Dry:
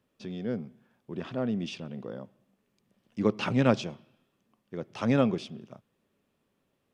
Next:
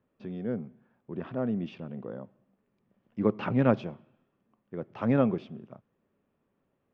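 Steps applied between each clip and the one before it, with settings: LPF 1800 Hz 12 dB/oct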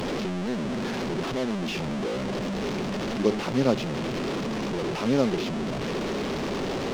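delta modulation 32 kbps, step -23.5 dBFS; fifteen-band EQ 100 Hz -7 dB, 400 Hz +5 dB, 1600 Hz -5 dB; backlash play -38 dBFS

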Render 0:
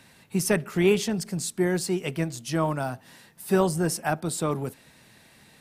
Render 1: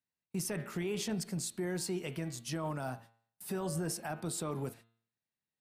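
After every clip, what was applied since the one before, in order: gate -44 dBFS, range -36 dB; de-hum 114.3 Hz, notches 39; limiter -21.5 dBFS, peak gain reduction 12 dB; gain -6 dB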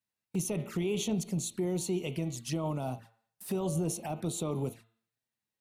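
envelope flanger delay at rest 9.3 ms, full sweep at -36 dBFS; gain +5 dB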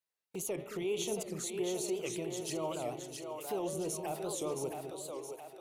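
resonant low shelf 300 Hz -9.5 dB, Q 1.5; split-band echo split 370 Hz, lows 0.213 s, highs 0.669 s, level -5 dB; record warp 78 rpm, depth 160 cents; gain -2.5 dB

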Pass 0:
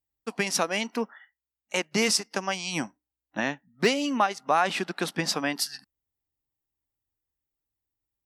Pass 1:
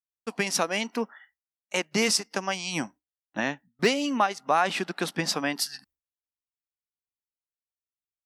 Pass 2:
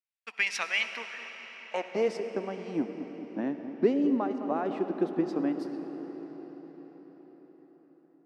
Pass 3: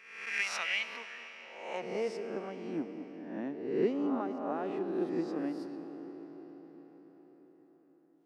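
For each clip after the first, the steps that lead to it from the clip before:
gate with hold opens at -51 dBFS
band-pass sweep 2300 Hz -> 320 Hz, 0.95–2.41; dark delay 0.212 s, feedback 67%, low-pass 1100 Hz, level -12.5 dB; on a send at -8 dB: reverb RT60 5.8 s, pre-delay 48 ms; on the sum: gain +4.5 dB
spectral swells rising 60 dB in 0.86 s; gain -7.5 dB

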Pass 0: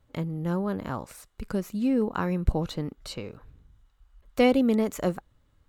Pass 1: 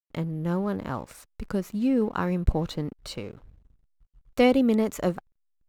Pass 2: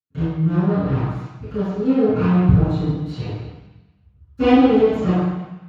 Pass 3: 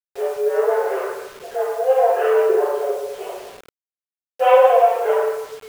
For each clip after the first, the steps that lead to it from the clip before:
backlash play -48 dBFS; gain +1 dB
minimum comb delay 6.5 ms; bell 880 Hz +3.5 dB 1.8 oct; reverb RT60 1.0 s, pre-delay 3 ms, DRR -19.5 dB; gain -18 dB
expander -46 dBFS; mistuned SSB +260 Hz 160–2700 Hz; bit-crush 7-bit; gain +1 dB

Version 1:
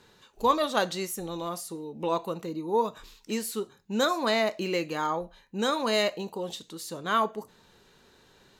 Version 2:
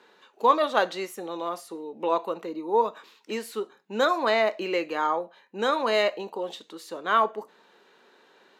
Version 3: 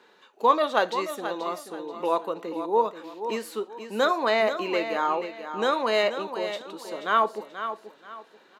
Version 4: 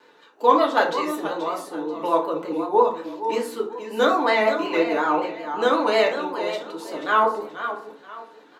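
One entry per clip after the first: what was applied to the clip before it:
HPF 190 Hz 24 dB/oct; tone controls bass -13 dB, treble -13 dB; gain +4 dB
feedback echo 0.483 s, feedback 30%, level -10 dB
vibrato 5.4 Hz 85 cents; FDN reverb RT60 0.46 s, low-frequency decay 1.3×, high-frequency decay 0.5×, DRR -1 dB

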